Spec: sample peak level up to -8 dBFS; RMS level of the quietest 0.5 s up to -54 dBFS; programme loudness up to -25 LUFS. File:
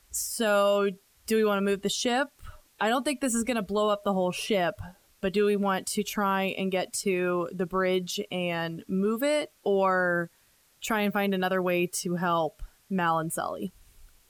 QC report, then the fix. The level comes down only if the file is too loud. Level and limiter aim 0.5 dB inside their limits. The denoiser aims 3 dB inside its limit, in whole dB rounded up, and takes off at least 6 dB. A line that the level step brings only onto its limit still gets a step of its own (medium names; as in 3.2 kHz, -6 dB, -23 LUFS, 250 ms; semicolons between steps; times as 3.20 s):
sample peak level -15.0 dBFS: pass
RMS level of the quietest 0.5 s -64 dBFS: pass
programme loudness -27.5 LUFS: pass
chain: none needed